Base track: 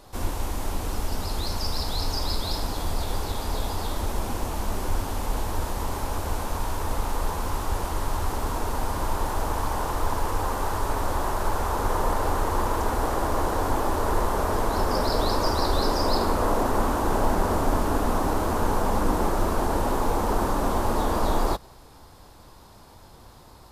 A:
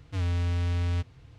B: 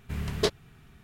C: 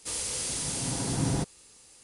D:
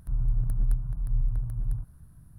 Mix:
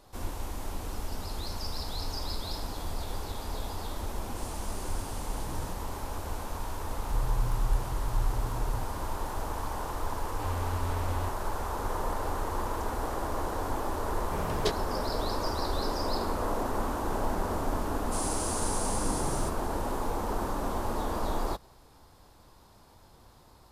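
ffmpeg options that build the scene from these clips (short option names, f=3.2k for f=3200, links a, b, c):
-filter_complex "[3:a]asplit=2[a][b];[0:a]volume=-7.5dB[c];[b]highshelf=f=6k:g=11[d];[a]atrim=end=2.03,asetpts=PTS-STARTPTS,volume=-15.5dB,afade=t=in:d=0.004:c=hsin,afade=t=out:st=2.026:d=0.004:c=hsin,adelay=4300[e];[4:a]atrim=end=2.38,asetpts=PTS-STARTPTS,volume=-3.5dB,afade=t=in:d=0.004:c=hsin,afade=t=out:st=2.376:d=0.004:c=hsin,adelay=7020[f];[1:a]atrim=end=1.38,asetpts=PTS-STARTPTS,volume=-7dB,afade=t=in:d=0.004:c=hsin,afade=t=out:st=1.376:d=0.004:c=hsin,adelay=10270[g];[2:a]atrim=end=1.03,asetpts=PTS-STARTPTS,volume=-4dB,afade=t=in:d=0.004:c=hsin,afade=t=out:st=1.026:d=0.004:c=hsin,adelay=14220[h];[d]atrim=end=2.03,asetpts=PTS-STARTPTS,volume=-10.5dB,afade=t=in:d=0.004:c=hsin,afade=t=out:st=2.026:d=0.004:c=hsin,adelay=18060[i];[c][e][f][g][h][i]amix=inputs=6:normalize=0"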